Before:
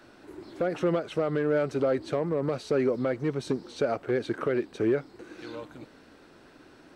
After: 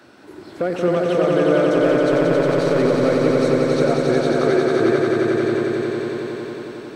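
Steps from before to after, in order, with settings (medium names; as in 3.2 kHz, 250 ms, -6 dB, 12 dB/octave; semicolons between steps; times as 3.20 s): high-pass 86 Hz; 1.74–2.79 s: overload inside the chain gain 25 dB; echo with a slow build-up 90 ms, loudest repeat 5, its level -4 dB; trim +5.5 dB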